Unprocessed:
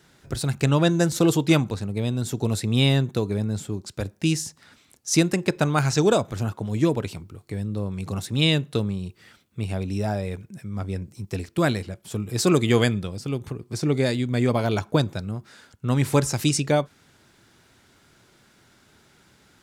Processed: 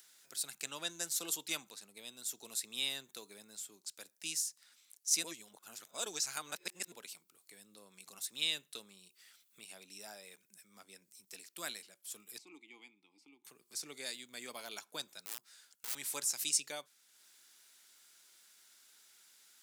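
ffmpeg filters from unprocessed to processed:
-filter_complex "[0:a]asettb=1/sr,asplit=3[a][b][c];[a]atrim=end=12.384[d];[b]atrim=start=12.38:end=13.45,asetpts=PTS-STARTPTS,afade=t=in:d=0.004:c=qsin,afade=t=out:st=1.066:d=0.004:c=qsin,asplit=3[e][f][g];[e]bandpass=f=300:t=q:w=8,volume=0dB[h];[f]bandpass=f=870:t=q:w=8,volume=-6dB[i];[g]bandpass=f=2.24k:t=q:w=8,volume=-9dB[j];[h][i][j]amix=inputs=3:normalize=0[k];[c]atrim=start=13.446[l];[d][k]acrossfade=d=0.004:c1=hsin:c2=qsin[m];[m][l]acrossfade=d=0.004:c1=qsin:c2=hsin,asettb=1/sr,asplit=3[n][o][p];[n]atrim=end=15.254[q];[o]atrim=start=15.25:end=15.95,asetpts=PTS-STARTPTS,afade=t=in:d=0.004:c=qsin,afade=t=out:st=0.696:d=0.004:c=qsin,aeval=exprs='(mod(18.8*val(0)+1,2)-1)/18.8':c=same[r];[p]atrim=start=15.946[s];[q][r]acrossfade=d=0.004:c1=hsin:c2=qsin[t];[t][s]acrossfade=d=0.004:c1=qsin:c2=hsin,asplit=3[u][v][w];[u]atrim=end=5.242[x];[v]atrim=start=5.238:end=6.922,asetpts=PTS-STARTPTS,areverse[y];[w]atrim=start=6.918[z];[x][y]acrossfade=d=0.004:c1=hsin:c2=hsin[aa];[aa][z]acrossfade=d=0.004:c1=hsin:c2=hsin,highpass=f=160:w=0.5412,highpass=f=160:w=1.3066,aderivative,acompressor=mode=upward:threshold=-52dB:ratio=2.5,volume=-4dB"

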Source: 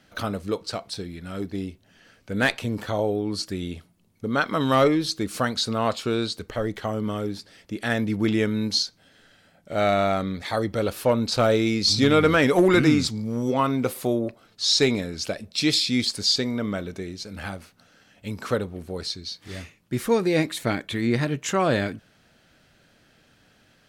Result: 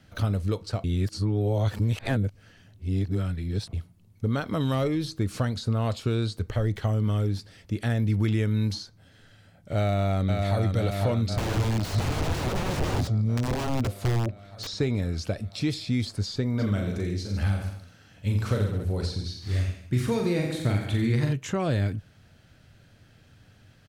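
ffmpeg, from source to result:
-filter_complex "[0:a]asplit=2[a][b];[b]afade=t=in:st=9.78:d=0.01,afade=t=out:st=10.64:d=0.01,aecho=0:1:500|1000|1500|2000|2500|3000|3500|4000|4500|5000|5500|6000:0.562341|0.393639|0.275547|0.192883|0.135018|0.0945127|0.0661589|0.0463112|0.0324179|0.0226925|0.0158848|0.0111193[c];[a][c]amix=inputs=2:normalize=0,asettb=1/sr,asplit=3[d][e][f];[d]atrim=end=11.374[g];[e]atrim=start=11.37:end=14.67,asetpts=PTS-STARTPTS,afade=t=in:d=0.004:c=qsin,afade=t=out:st=3.296:d=0.004:c=qsin,aeval=exprs='(mod(8.41*val(0)+1,2)-1)/8.41':c=same[h];[f]atrim=start=14.666[i];[g][h]acrossfade=d=0.004:c1=hsin:c2=qsin[j];[j][i]acrossfade=d=0.004:c1=qsin:c2=hsin,asplit=3[k][l][m];[k]afade=t=out:st=16.58:d=0.02[n];[l]aecho=1:1:40|86|138.9|199.7|269.7:0.631|0.398|0.251|0.158|0.1,afade=t=in:st=16.58:d=0.02,afade=t=out:st=21.32:d=0.02[o];[m]afade=t=in:st=21.32:d=0.02[p];[n][o][p]amix=inputs=3:normalize=0,asplit=3[q][r][s];[q]atrim=end=0.842[t];[r]atrim=start=0.838:end=3.732,asetpts=PTS-STARTPTS,areverse[u];[s]atrim=start=3.728[v];[t][u]acrossfade=d=0.004:c1=hsin:c2=hsin[w];[w][v]acrossfade=d=0.004:c1=hsin:c2=hsin,equalizer=f=100:w=1.3:g=12.5,acrossover=split=880|1800|8000[x][y][z][aa];[x]acompressor=threshold=-22dB:ratio=4[ab];[y]acompressor=threshold=-43dB:ratio=4[ac];[z]acompressor=threshold=-38dB:ratio=4[ad];[aa]acompressor=threshold=-51dB:ratio=4[ae];[ab][ac][ad][ae]amix=inputs=4:normalize=0,lowshelf=f=78:g=9,volume=-2dB"

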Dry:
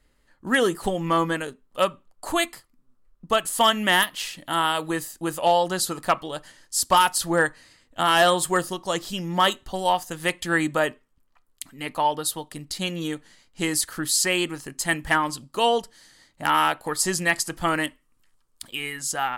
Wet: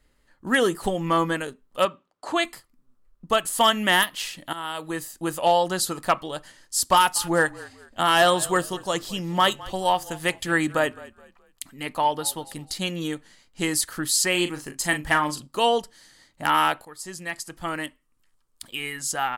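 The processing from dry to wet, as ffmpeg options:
-filter_complex "[0:a]asettb=1/sr,asplit=3[a][b][c];[a]atrim=end=1.854[d];[b]atrim=start=1.85:end=2.45,asetpts=PTS-STARTPTS,afade=t=in:d=0.004:c=qsin,afade=t=out:st=0.596:d=0.004:c=qsin,highpass=180,lowpass=5.4k[e];[c]atrim=start=2.446[f];[d][e]acrossfade=d=0.004:c1=hsin:c2=qsin[g];[g][f]acrossfade=d=0.004:c1=qsin:c2=hsin,asplit=3[h][i][j];[h]afade=t=out:st=7.15:d=0.02[k];[i]asplit=4[l][m][n][o];[m]adelay=211,afreqshift=-37,volume=-20dB[p];[n]adelay=422,afreqshift=-74,volume=-29.6dB[q];[o]adelay=633,afreqshift=-111,volume=-39.3dB[r];[l][p][q][r]amix=inputs=4:normalize=0,afade=t=in:st=7.15:d=0.02,afade=t=out:st=12.75:d=0.02[s];[j]afade=t=in:st=12.75:d=0.02[t];[k][s][t]amix=inputs=3:normalize=0,asettb=1/sr,asplit=3[u][v][w];[u]atrim=end=14.314[x];[v]atrim=start=14.31:end=15.47,asetpts=PTS-STARTPTS,afade=t=in:d=0.004:c=qsin,afade=t=out:st=1.156:d=0.004:c=qsin,asplit=2[y][z];[z]adelay=40,volume=-9dB[aa];[y][aa]amix=inputs=2:normalize=0,atrim=end_sample=51156[ab];[w]atrim=start=15.466[ac];[x][ab]acrossfade=d=0.004:c1=hsin:c2=qsin[ad];[ad][ac]acrossfade=d=0.004:c1=qsin:c2=hsin,asplit=3[ae][af][ag];[ae]atrim=end=4.53,asetpts=PTS-STARTPTS,afade=t=out:st=4.526:d=0.004:c=hsin:silence=0.188365[ah];[af]atrim=start=4.53:end=16.85,asetpts=PTS-STARTPTS,afade=t=in:d=0.68:silence=0.188365,afade=t=out:st=12.316:d=0.004:c=hsin:silence=0.133352[ai];[ag]atrim=start=16.85,asetpts=PTS-STARTPTS,afade=t=in:d=2.12:silence=0.133352[aj];[ah][ai][aj]concat=n=3:v=0:a=1"

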